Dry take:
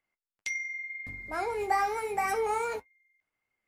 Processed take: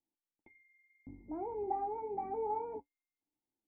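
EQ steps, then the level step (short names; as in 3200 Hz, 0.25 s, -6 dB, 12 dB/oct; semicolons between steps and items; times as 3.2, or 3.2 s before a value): vocal tract filter u; +6.5 dB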